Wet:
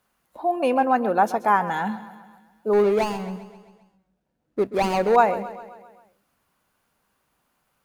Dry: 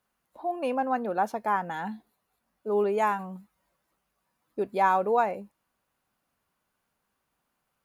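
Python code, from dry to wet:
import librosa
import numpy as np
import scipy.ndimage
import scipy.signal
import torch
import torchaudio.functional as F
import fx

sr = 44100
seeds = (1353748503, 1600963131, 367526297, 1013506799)

y = fx.median_filter(x, sr, points=41, at=(2.73, 5.16))
y = fx.echo_feedback(y, sr, ms=132, feedback_pct=57, wet_db=-15.0)
y = F.gain(torch.from_numpy(y), 7.5).numpy()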